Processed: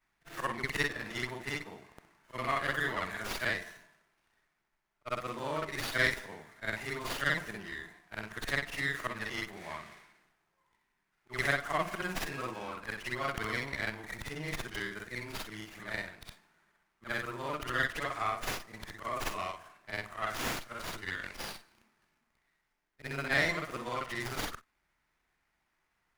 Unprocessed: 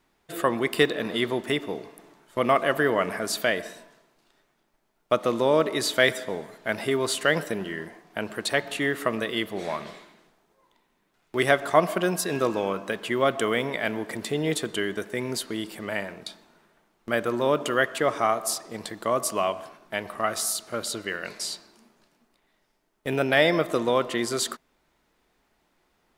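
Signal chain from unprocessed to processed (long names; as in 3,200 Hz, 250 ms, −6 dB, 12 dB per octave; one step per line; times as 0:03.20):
every overlapping window played backwards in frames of 130 ms
octave-band graphic EQ 250/500/2,000/4,000/8,000 Hz −7/−10/+6/−7/+8 dB
windowed peak hold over 5 samples
level −4.5 dB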